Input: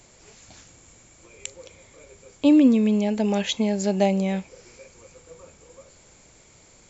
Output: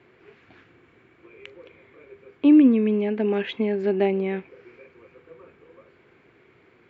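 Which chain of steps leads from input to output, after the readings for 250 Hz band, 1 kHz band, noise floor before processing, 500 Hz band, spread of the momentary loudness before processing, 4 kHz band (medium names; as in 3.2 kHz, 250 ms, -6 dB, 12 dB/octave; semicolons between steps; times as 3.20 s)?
0.0 dB, -4.0 dB, -54 dBFS, +2.0 dB, 22 LU, -8.0 dB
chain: cabinet simulation 140–2600 Hz, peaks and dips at 190 Hz -6 dB, 380 Hz +8 dB, 580 Hz -9 dB, 860 Hz -6 dB, 1.6 kHz +3 dB; trim +1 dB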